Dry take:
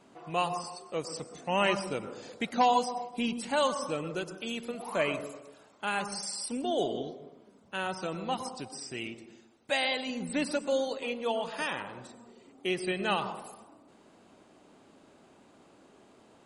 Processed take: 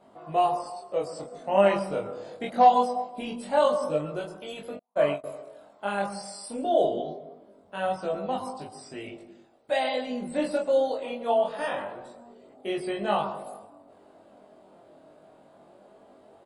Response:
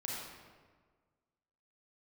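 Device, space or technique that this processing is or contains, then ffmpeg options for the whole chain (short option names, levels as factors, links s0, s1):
double-tracked vocal: -filter_complex "[0:a]asettb=1/sr,asplit=3[s0][s1][s2];[s0]atrim=end=4.754[s3];[s1]atrim=start=4.75:end=5.24,asetpts=PTS-STARTPTS,afade=t=in:d=0.004:c=qsin,afade=t=out:st=0.486:d=0.004:c=qsin,agate=range=0.00355:threshold=0.0316:ratio=16:detection=peak[s4];[s2]atrim=start=5.236[s5];[s3][s4]acrossfade=d=0.004:c1=hsin:c2=qsin[s6];[s6][s5]acrossfade=d=0.004:c1=qsin:c2=hsin,equalizer=f=630:t=o:w=0.67:g=11,equalizer=f=2500:t=o:w=0.67:g=-5,equalizer=f=6300:t=o:w=0.67:g=-11,asplit=2[s7][s8];[s8]adelay=20,volume=0.794[s9];[s7][s9]amix=inputs=2:normalize=0,flanger=delay=19:depth=7.5:speed=0.23,volume=1.12"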